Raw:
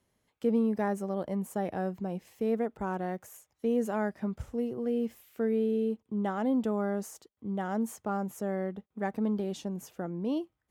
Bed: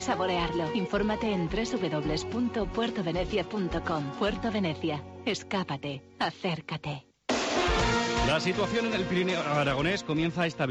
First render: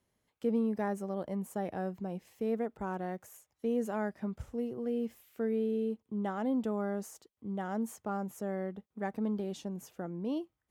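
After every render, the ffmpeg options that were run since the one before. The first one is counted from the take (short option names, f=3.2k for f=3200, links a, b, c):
-af "volume=-3.5dB"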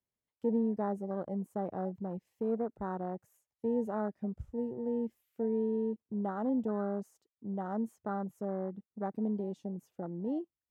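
-af "afwtdn=0.01"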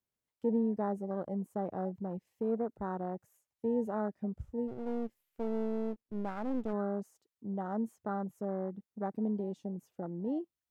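-filter_complex "[0:a]asplit=3[a][b][c];[a]afade=t=out:st=4.67:d=0.02[d];[b]aeval=exprs='if(lt(val(0),0),0.251*val(0),val(0))':c=same,afade=t=in:st=4.67:d=0.02,afade=t=out:st=6.72:d=0.02[e];[c]afade=t=in:st=6.72:d=0.02[f];[d][e][f]amix=inputs=3:normalize=0"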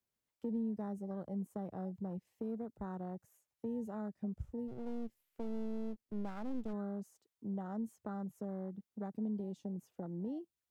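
-filter_complex "[0:a]acrossover=split=200|3000[a][b][c];[b]acompressor=threshold=-44dB:ratio=5[d];[a][d][c]amix=inputs=3:normalize=0"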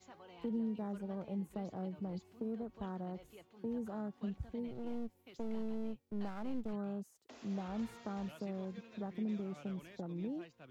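-filter_complex "[1:a]volume=-28.5dB[a];[0:a][a]amix=inputs=2:normalize=0"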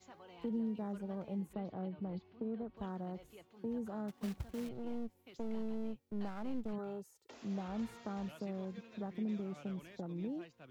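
-filter_complex "[0:a]asettb=1/sr,asplit=3[a][b][c];[a]atrim=end=1.534[d];[b]atrim=start=1.53:end=2.77,asetpts=PTS-STARTPTS,afade=t=in:d=0.004:c=qsin,afade=t=out:st=1.236:d=0.004:c=qsin,lowpass=f=4.1k:w=0.5412,lowpass=f=4.1k:w=1.3066[e];[c]atrim=start=2.766[f];[d][e]acrossfade=d=0.004:c1=hsin:c2=qsin[g];[g][f]acrossfade=d=0.004:c1=qsin:c2=hsin,asettb=1/sr,asplit=3[h][i][j];[h]atrim=end=4.084[k];[i]atrim=start=4.08:end=4.69,asetpts=PTS-STARTPTS,afade=t=in:d=0.004:c=qsin,afade=t=out:st=0.606:d=0.004:c=qsin,acrusher=bits=3:mode=log:mix=0:aa=0.000001[l];[j]atrim=start=4.686[m];[k][l]acrossfade=d=0.004:c1=hsin:c2=qsin[n];[n][m]acrossfade=d=0.004:c1=qsin:c2=hsin,asettb=1/sr,asplit=3[o][p][q];[o]atrim=end=6.784[r];[p]atrim=start=6.78:end=7.34,asetpts=PTS-STARTPTS,afade=t=in:d=0.004:c=qsin,afade=t=out:st=0.556:d=0.004:c=qsin,aecho=1:1:2.2:0.65,atrim=end_sample=24696[s];[q]atrim=start=7.336[t];[r][s]acrossfade=d=0.004:c1=hsin:c2=qsin[u];[u][t]acrossfade=d=0.004:c1=qsin:c2=hsin"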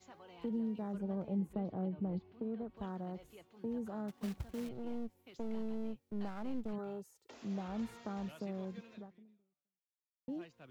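-filter_complex "[0:a]asettb=1/sr,asplit=3[a][b][c];[a]atrim=end=0.944[d];[b]atrim=start=0.94:end=2.32,asetpts=PTS-STARTPTS,afade=t=in:d=0.004:c=qsin,afade=t=out:st=1.376:d=0.004:c=qsin,tiltshelf=f=940:g=4.5[e];[c]atrim=start=2.316[f];[d][e]acrossfade=d=0.004:c1=hsin:c2=qsin[g];[g][f]acrossfade=d=0.004:c1=qsin:c2=hsin,asplit=2[h][i];[h]atrim=end=10.28,asetpts=PTS-STARTPTS,afade=t=out:st=8.91:d=1.37:c=exp[j];[i]atrim=start=10.28,asetpts=PTS-STARTPTS,afade=t=in:d=0.004:c=hsin[k];[j][k]concat=n=2:v=0:a=1"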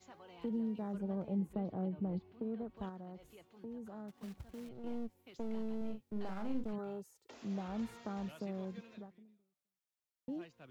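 -filter_complex "[0:a]asettb=1/sr,asplit=3[a][b][c];[a]atrim=end=2.894[d];[b]atrim=start=2.89:end=4.84,asetpts=PTS-STARTPTS,afade=t=in:d=0.004:c=qsin,afade=t=out:st=1.946:d=0.004:c=qsin,acompressor=threshold=-55dB:ratio=1.5:attack=3.2:release=140:knee=1:detection=peak[e];[c]atrim=start=4.836[f];[d][e]acrossfade=d=0.004:c1=hsin:c2=qsin[g];[g][f]acrossfade=d=0.004:c1=qsin:c2=hsin,asettb=1/sr,asplit=3[h][i][j];[h]atrim=end=5.774[k];[i]atrim=start=5.77:end=6.64,asetpts=PTS-STARTPTS,afade=t=in:d=0.004:c=qsin,afade=t=out:st=0.866:d=0.004:c=qsin,asplit=2[l][m];[m]adelay=42,volume=-6.5dB[n];[l][n]amix=inputs=2:normalize=0,atrim=end_sample=38367[o];[j]atrim=start=6.636[p];[k][o]acrossfade=d=0.004:c1=hsin:c2=qsin[q];[q][p]acrossfade=d=0.004:c1=qsin:c2=hsin"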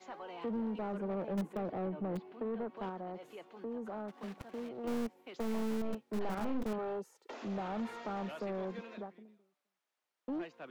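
-filter_complex "[0:a]acrossover=split=150[a][b];[a]acrusher=bits=6:mix=0:aa=0.000001[c];[b]asplit=2[d][e];[e]highpass=f=720:p=1,volume=22dB,asoftclip=type=tanh:threshold=-28.5dB[f];[d][f]amix=inputs=2:normalize=0,lowpass=f=1.1k:p=1,volume=-6dB[g];[c][g]amix=inputs=2:normalize=0"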